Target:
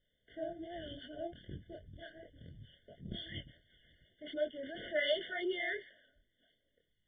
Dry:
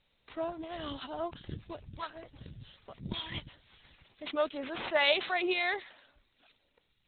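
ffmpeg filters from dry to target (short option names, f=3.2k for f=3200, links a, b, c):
-af "flanger=delay=20:depth=6.9:speed=2.7,afftfilt=real='re*eq(mod(floor(b*sr/1024/720),2),0)':imag='im*eq(mod(floor(b*sr/1024/720),2),0)':win_size=1024:overlap=0.75,volume=-2dB"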